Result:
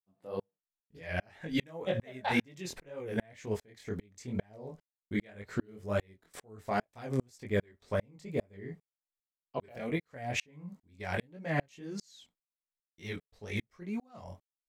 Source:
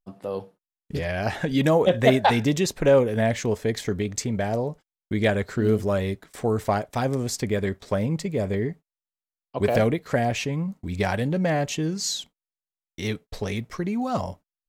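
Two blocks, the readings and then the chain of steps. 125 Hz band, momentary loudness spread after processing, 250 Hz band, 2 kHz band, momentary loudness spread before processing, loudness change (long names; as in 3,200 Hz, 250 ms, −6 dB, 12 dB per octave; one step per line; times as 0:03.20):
−13.5 dB, 14 LU, −12.0 dB, −8.5 dB, 12 LU, −12.5 dB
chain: chorus effect 2 Hz, delay 18.5 ms, depth 5.7 ms
dynamic equaliser 2,100 Hz, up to +6 dB, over −46 dBFS, Q 1.8
tremolo with a ramp in dB swelling 2.5 Hz, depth 39 dB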